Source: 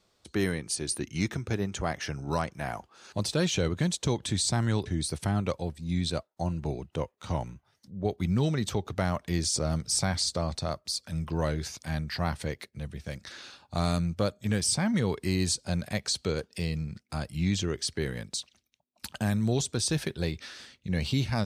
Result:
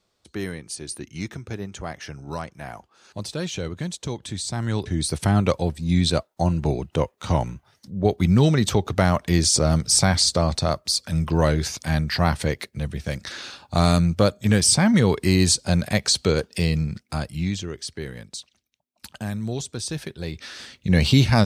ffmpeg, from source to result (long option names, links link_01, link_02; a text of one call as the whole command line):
ffmpeg -i in.wav -af "volume=22.5dB,afade=type=in:start_time=4.5:duration=0.91:silence=0.266073,afade=type=out:start_time=16.86:duration=0.76:silence=0.281838,afade=type=in:start_time=20.24:duration=0.69:silence=0.223872" out.wav